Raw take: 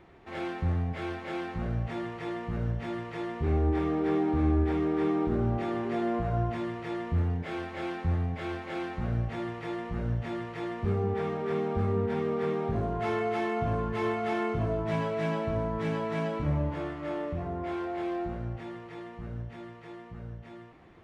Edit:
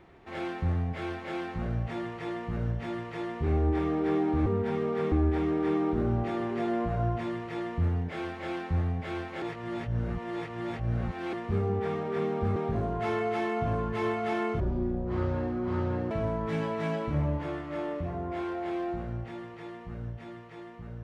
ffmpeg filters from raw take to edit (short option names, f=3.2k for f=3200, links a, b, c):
-filter_complex "[0:a]asplit=8[a][b][c][d][e][f][g][h];[a]atrim=end=4.462[i];[b]atrim=start=11.898:end=12.562[j];[c]atrim=start=4.458:end=8.762[k];[d]atrim=start=8.758:end=10.672,asetpts=PTS-STARTPTS,areverse[l];[e]atrim=start=10.668:end=11.902[m];[f]atrim=start=12.558:end=14.604[n];[g]atrim=start=14.6:end=15.43,asetpts=PTS-STARTPTS,asetrate=24255,aresample=44100[o];[h]atrim=start=15.426[p];[i][j]acrossfade=d=0.004:c1=hsin:c2=hsin[q];[q][k]acrossfade=d=0.004:c1=hsin:c2=hsin[r];[r][l]acrossfade=d=0.004:c1=hsin:c2=hsin[s];[s][m]acrossfade=d=0.004:c1=hsin:c2=hsin[t];[t][n]acrossfade=d=0.004:c1=hsin:c2=hsin[u];[u][o]acrossfade=d=0.004:c1=hsin:c2=hsin[v];[v][p]acrossfade=d=0.004:c1=hsin:c2=hsin"